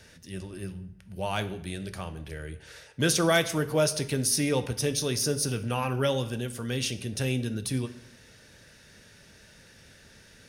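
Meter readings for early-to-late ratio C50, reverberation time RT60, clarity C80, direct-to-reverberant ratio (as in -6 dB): 14.5 dB, 0.75 s, 17.5 dB, 10.0 dB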